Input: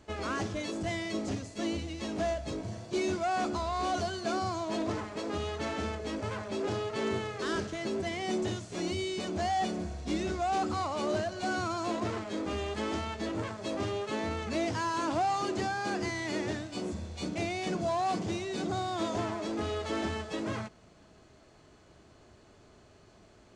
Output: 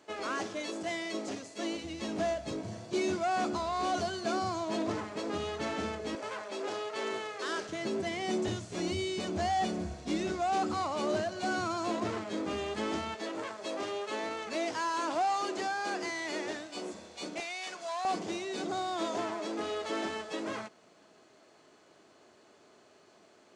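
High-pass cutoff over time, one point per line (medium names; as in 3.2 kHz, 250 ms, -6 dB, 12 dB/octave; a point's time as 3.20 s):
310 Hz
from 1.84 s 120 Hz
from 6.15 s 450 Hz
from 7.69 s 130 Hz
from 8.48 s 50 Hz
from 9.94 s 130 Hz
from 13.15 s 380 Hz
from 17.40 s 990 Hz
from 18.05 s 290 Hz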